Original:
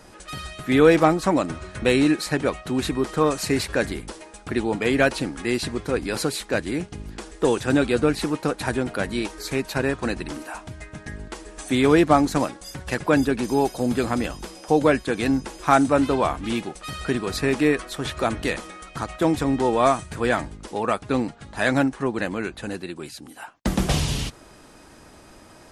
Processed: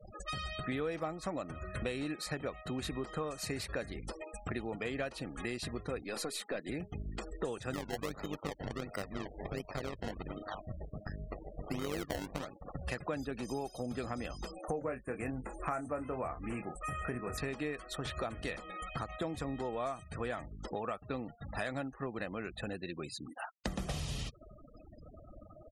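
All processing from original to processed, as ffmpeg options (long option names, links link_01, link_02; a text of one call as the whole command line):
ffmpeg -i in.wav -filter_complex "[0:a]asettb=1/sr,asplit=3[link_01][link_02][link_03];[link_01]atrim=end=6.024[link_04];[link_02]atrim=start=6.02:end=6.69,asetpts=PTS-STARTPTS,afade=type=in:duration=0.004:curve=qsin,afade=type=out:start_time=0.666:duration=0.004:curve=qsin,highpass=frequency=190:width=0.5412,highpass=frequency=190:width=1.3066,aeval=exprs='(tanh(8.91*val(0)+0.25)-tanh(0.25))/8.91':channel_layout=same[link_05];[link_03]atrim=start=6.686[link_06];[link_04][link_05]acrossfade=duration=0.004:curve1=hsin:curve2=qsin[link_07];[link_07][link_06]acrossfade=duration=0.004:curve1=qsin:curve2=hsin,asettb=1/sr,asplit=3[link_08][link_09][link_10];[link_08]atrim=end=7.734[link_11];[link_09]atrim=start=7.73:end=12.83,asetpts=PTS-STARTPTS,afade=type=in:duration=0.004:curve=qsin,afade=type=out:start_time=5.096:duration=0.004:curve=qsin,equalizer=frequency=3900:width_type=o:width=1.2:gain=-2.5,acrusher=samples=25:mix=1:aa=0.000001:lfo=1:lforange=25:lforate=1.4,tremolo=f=99:d=0.75[link_12];[link_10]atrim=start=12.826[link_13];[link_11][link_12]acrossfade=duration=0.004:curve1=hsin:curve2=qsin[link_14];[link_14][link_13]acrossfade=duration=0.004:curve1=qsin:curve2=hsin,asettb=1/sr,asplit=3[link_15][link_16][link_17];[link_15]atrim=end=14.514[link_18];[link_16]atrim=start=14.51:end=17.38,asetpts=PTS-STARTPTS,afade=type=in:duration=0.004:curve=qsin,afade=type=out:start_time=2.866:duration=0.004:curve=qsin,asplit=2[link_19][link_20];[link_20]adelay=24,volume=-8dB[link_21];[link_19][link_21]amix=inputs=2:normalize=0,atrim=end_sample=126567,acrusher=bits=8:mix=0:aa=0.5,asuperstop=centerf=4000:order=4:qfactor=1[link_22];[link_17]atrim=start=17.376[link_23];[link_18][link_22]acrossfade=duration=0.004:curve1=hsin:curve2=qsin[link_24];[link_24][link_23]acrossfade=duration=0.004:curve1=qsin:curve2=hsin,aecho=1:1:1.6:0.31,afftfilt=real='re*gte(hypot(re,im),0.0141)':imag='im*gte(hypot(re,im),0.0141)':win_size=1024:overlap=0.75,acompressor=threshold=-35dB:ratio=5,volume=-1.5dB" out.wav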